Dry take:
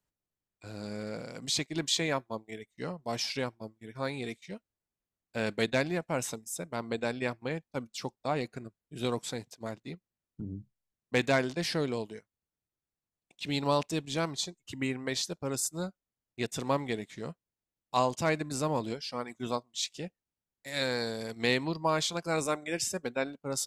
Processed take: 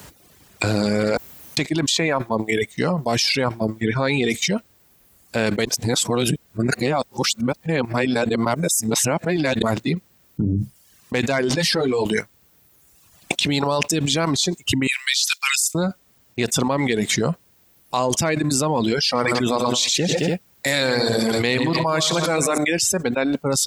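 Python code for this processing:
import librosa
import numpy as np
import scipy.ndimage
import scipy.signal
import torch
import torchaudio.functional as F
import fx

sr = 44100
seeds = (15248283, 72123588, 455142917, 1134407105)

y = fx.lowpass(x, sr, hz=5400.0, slope=12, at=(3.81, 4.3))
y = fx.ensemble(y, sr, at=(11.49, 12.05))
y = fx.cheby2_highpass(y, sr, hz=400.0, order=4, stop_db=80, at=(14.87, 15.75))
y = fx.echo_multitap(y, sr, ms=(89, 113, 121, 218, 287), db=(-12.5, -12.0, -12.0, -14.5, -16.5), at=(19.06, 22.58))
y = fx.edit(y, sr, fx.room_tone_fill(start_s=1.17, length_s=0.4),
    fx.reverse_span(start_s=5.65, length_s=3.97), tone=tone)
y = scipy.signal.sosfilt(scipy.signal.butter(2, 50.0, 'highpass', fs=sr, output='sos'), y)
y = fx.dereverb_blind(y, sr, rt60_s=1.1)
y = fx.env_flatten(y, sr, amount_pct=100)
y = y * librosa.db_to_amplitude(4.0)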